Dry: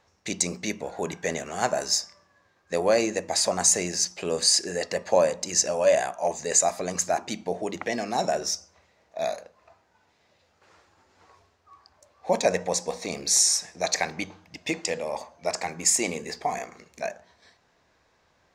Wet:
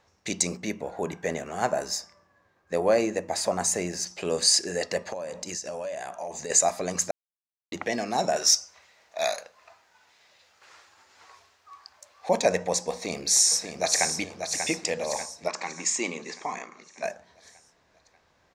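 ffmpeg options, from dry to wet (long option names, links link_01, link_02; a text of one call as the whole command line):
ffmpeg -i in.wav -filter_complex "[0:a]asettb=1/sr,asplit=3[link_01][link_02][link_03];[link_01]atrim=end=0.574[link_04];[link_02]atrim=start=0.57:end=4.07,asetpts=PTS-STARTPTS,afade=type=in:duration=0.004:curve=qsin,afade=type=out:start_time=3.496:duration=0.004:curve=qsin,equalizer=frequency=5400:width=0.5:gain=-7[link_05];[link_03]atrim=start=4.066[link_06];[link_04][link_05]acrossfade=duration=0.004:curve1=hsin:curve2=qsin[link_07];[link_07][link_06]acrossfade=duration=0.004:curve1=qsin:curve2=hsin,asettb=1/sr,asplit=3[link_08][link_09][link_10];[link_08]atrim=end=5.034[link_11];[link_09]atrim=start=5.03:end=6.5,asetpts=PTS-STARTPTS,afade=type=in:duration=0.004:curve=qsin,afade=type=out:start_time=1.466:duration=0.004:curve=qsin,acompressor=threshold=-30dB:ratio=12:attack=3.2:release=140:knee=1:detection=peak[link_12];[link_10]atrim=start=6.496[link_13];[link_11][link_12]acrossfade=duration=0.004:curve1=hsin:curve2=qsin[link_14];[link_14][link_13]acrossfade=duration=0.004:curve1=qsin:curve2=hsin,asettb=1/sr,asplit=3[link_15][link_16][link_17];[link_15]atrim=end=8.364[link_18];[link_16]atrim=start=8.36:end=12.29,asetpts=PTS-STARTPTS,afade=type=in:duration=0.004:curve=qsin,afade=type=out:start_time=3.926:duration=0.004:curve=qsin,tiltshelf=frequency=630:gain=-9[link_19];[link_17]atrim=start=12.286[link_20];[link_18][link_19]acrossfade=duration=0.004:curve1=hsin:curve2=qsin[link_21];[link_21][link_20]acrossfade=duration=0.004:curve1=qsin:curve2=hsin,asplit=2[link_22][link_23];[link_23]afade=type=in:start_time=12.92:duration=0.01,afade=type=out:start_time=14.07:duration=0.01,aecho=0:1:590|1180|1770|2360|2950|3540|4130:0.446684|0.245676|0.135122|0.074317|0.0408743|0.0224809|0.0123645[link_24];[link_22][link_24]amix=inputs=2:normalize=0,asettb=1/sr,asplit=3[link_25][link_26][link_27];[link_25]atrim=end=15.484[link_28];[link_26]atrim=start=15.48:end=17.03,asetpts=PTS-STARTPTS,afade=type=in:duration=0.004:curve=qsin,afade=type=out:start_time=1.546:duration=0.004:curve=qsin,highpass=230,equalizer=frequency=470:width_type=q:width=4:gain=-5,equalizer=frequency=690:width_type=q:width=4:gain=-10,equalizer=frequency=1100:width_type=q:width=4:gain=5,equalizer=frequency=1600:width_type=q:width=4:gain=-3,equalizer=frequency=4900:width_type=q:width=4:gain=-6,lowpass=frequency=6600:width=0.5412,lowpass=frequency=6600:width=1.3066[link_29];[link_27]atrim=start=17.026[link_30];[link_28][link_29]acrossfade=duration=0.004:curve1=hsin:curve2=qsin[link_31];[link_31][link_30]acrossfade=duration=0.004:curve1=qsin:curve2=hsin,asplit=3[link_32][link_33][link_34];[link_32]atrim=end=7.11,asetpts=PTS-STARTPTS,afade=type=out:start_time=7.106:duration=0.004:curve=hsin[link_35];[link_33]atrim=start=7.11:end=7.72,asetpts=PTS-STARTPTS,volume=0[link_36];[link_34]atrim=start=7.72,asetpts=PTS-STARTPTS,afade=type=in:duration=0.004:curve=hsin[link_37];[link_35][link_36][link_37]concat=n=3:v=0:a=1" out.wav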